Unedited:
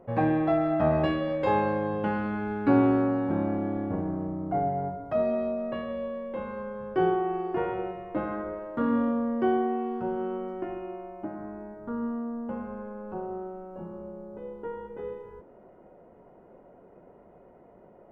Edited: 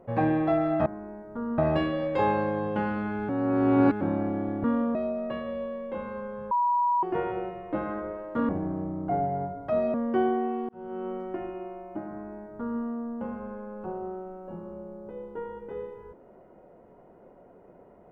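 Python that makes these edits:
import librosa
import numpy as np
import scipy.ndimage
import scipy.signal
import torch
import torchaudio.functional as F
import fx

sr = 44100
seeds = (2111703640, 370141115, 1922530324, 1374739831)

y = fx.edit(x, sr, fx.reverse_span(start_s=2.57, length_s=0.72),
    fx.swap(start_s=3.92, length_s=1.45, other_s=8.91, other_length_s=0.31),
    fx.bleep(start_s=6.93, length_s=0.52, hz=969.0, db=-21.0),
    fx.fade_in_span(start_s=9.97, length_s=0.42),
    fx.duplicate(start_s=11.38, length_s=0.72, to_s=0.86), tone=tone)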